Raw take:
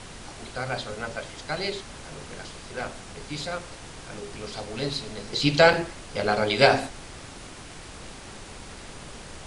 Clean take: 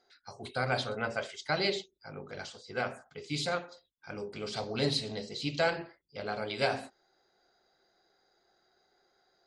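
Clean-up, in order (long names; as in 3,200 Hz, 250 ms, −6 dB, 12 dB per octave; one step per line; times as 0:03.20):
repair the gap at 0:05.73, 3.5 ms
noise reduction from a noise print 30 dB
level 0 dB, from 0:05.33 −12 dB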